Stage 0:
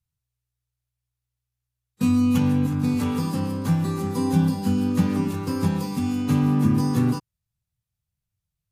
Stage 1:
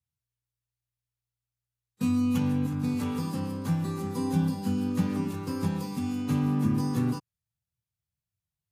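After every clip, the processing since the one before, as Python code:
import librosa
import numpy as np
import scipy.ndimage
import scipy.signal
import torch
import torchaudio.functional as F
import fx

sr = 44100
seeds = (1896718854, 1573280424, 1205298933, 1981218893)

y = scipy.signal.sosfilt(scipy.signal.butter(2, 67.0, 'highpass', fs=sr, output='sos'), x)
y = y * librosa.db_to_amplitude(-6.0)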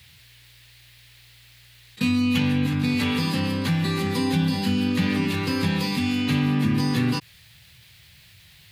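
y = fx.band_shelf(x, sr, hz=2800.0, db=13.0, octaves=1.7)
y = fx.env_flatten(y, sr, amount_pct=50)
y = y * librosa.db_to_amplitude(2.0)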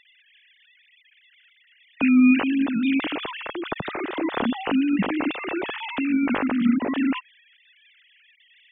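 y = fx.sine_speech(x, sr)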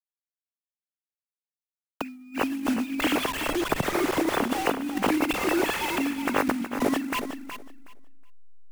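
y = fx.delta_hold(x, sr, step_db=-31.0)
y = fx.over_compress(y, sr, threshold_db=-26.0, ratio=-0.5)
y = fx.echo_feedback(y, sr, ms=369, feedback_pct=18, wet_db=-9.5)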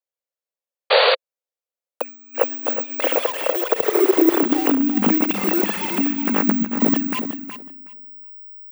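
y = (np.kron(scipy.signal.resample_poly(x, 1, 2), np.eye(2)[0]) * 2)[:len(x)]
y = fx.spec_paint(y, sr, seeds[0], shape='noise', start_s=0.9, length_s=0.25, low_hz=390.0, high_hz=4700.0, level_db=-18.0)
y = fx.filter_sweep_highpass(y, sr, from_hz=520.0, to_hz=200.0, start_s=3.59, end_s=5.22, q=6.3)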